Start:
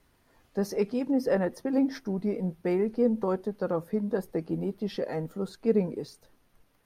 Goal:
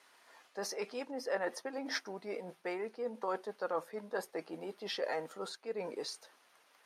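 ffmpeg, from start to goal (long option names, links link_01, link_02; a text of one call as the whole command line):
ffmpeg -i in.wav -af "lowpass=9400,areverse,acompressor=threshold=-32dB:ratio=6,areverse,highpass=750,volume=7.5dB" out.wav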